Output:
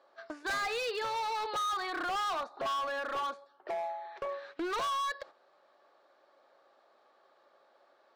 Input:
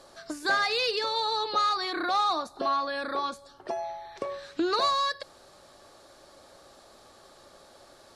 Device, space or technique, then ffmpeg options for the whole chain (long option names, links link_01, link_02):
walkie-talkie: -af "highpass=480,lowpass=2300,asoftclip=type=hard:threshold=-31dB,agate=range=-9dB:threshold=-49dB:ratio=16:detection=peak"